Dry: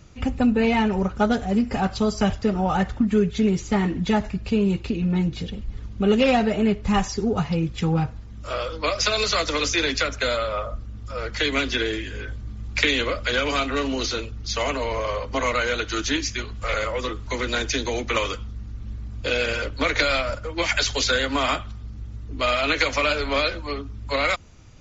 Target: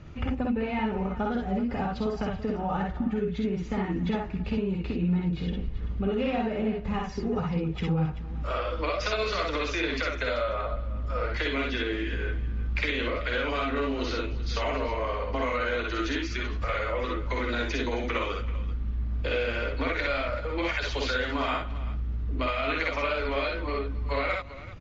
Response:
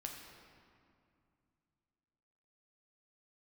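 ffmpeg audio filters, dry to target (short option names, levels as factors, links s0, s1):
-filter_complex "[0:a]lowpass=2700,acompressor=threshold=0.0251:ratio=4,asplit=2[s0][s1];[s1]aecho=0:1:51|63|269|385:0.596|0.708|0.119|0.178[s2];[s0][s2]amix=inputs=2:normalize=0,volume=1.26"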